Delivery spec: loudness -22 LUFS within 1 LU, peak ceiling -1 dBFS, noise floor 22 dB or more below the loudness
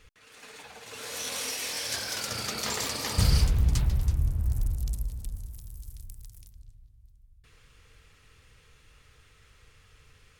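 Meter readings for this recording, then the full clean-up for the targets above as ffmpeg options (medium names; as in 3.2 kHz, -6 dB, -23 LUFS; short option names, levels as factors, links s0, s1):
loudness -29.5 LUFS; peak level -10.5 dBFS; loudness target -22.0 LUFS
-> -af "volume=2.37"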